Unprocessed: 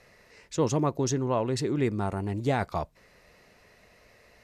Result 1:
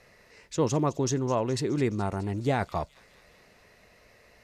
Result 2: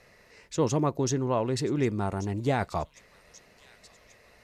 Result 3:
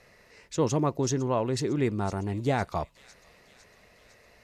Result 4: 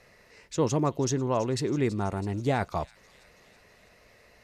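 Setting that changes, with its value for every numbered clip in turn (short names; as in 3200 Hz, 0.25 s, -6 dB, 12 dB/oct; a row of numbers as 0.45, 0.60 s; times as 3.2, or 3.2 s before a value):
thin delay, time: 0.21, 1.135, 0.505, 0.327 s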